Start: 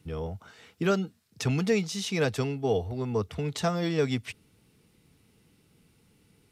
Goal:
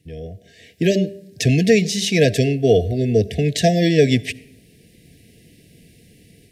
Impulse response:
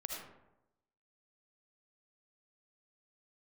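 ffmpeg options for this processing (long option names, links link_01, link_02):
-filter_complex "[0:a]asplit=2[link_01][link_02];[1:a]atrim=start_sample=2205[link_03];[link_02][link_03]afir=irnorm=-1:irlink=0,volume=-17.5dB[link_04];[link_01][link_04]amix=inputs=2:normalize=0,dynaudnorm=framelen=430:gausssize=3:maxgain=13dB,afftfilt=real='re*(1-between(b*sr/4096,740,1600))':imag='im*(1-between(b*sr/4096,740,1600))':win_size=4096:overlap=0.75,bandreject=frequency=197.5:width_type=h:width=4,bandreject=frequency=395:width_type=h:width=4,bandreject=frequency=592.5:width_type=h:width=4,bandreject=frequency=790:width_type=h:width=4,bandreject=frequency=987.5:width_type=h:width=4,bandreject=frequency=1185:width_type=h:width=4,bandreject=frequency=1382.5:width_type=h:width=4,bandreject=frequency=1580:width_type=h:width=4"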